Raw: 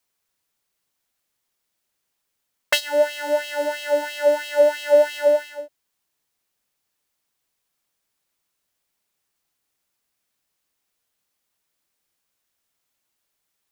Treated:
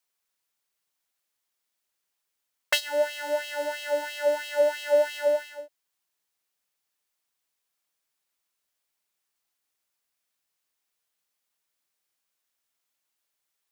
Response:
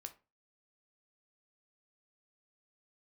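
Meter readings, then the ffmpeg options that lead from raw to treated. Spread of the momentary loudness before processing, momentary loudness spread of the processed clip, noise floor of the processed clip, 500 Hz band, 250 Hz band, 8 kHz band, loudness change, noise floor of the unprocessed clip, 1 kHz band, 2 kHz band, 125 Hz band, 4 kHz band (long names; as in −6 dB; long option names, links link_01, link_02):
8 LU, 8 LU, −81 dBFS, −6.5 dB, −9.5 dB, −4.0 dB, −6.0 dB, −77 dBFS, −5.5 dB, −4.5 dB, can't be measured, −4.0 dB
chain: -af "lowshelf=frequency=380:gain=-8.5,volume=-4dB"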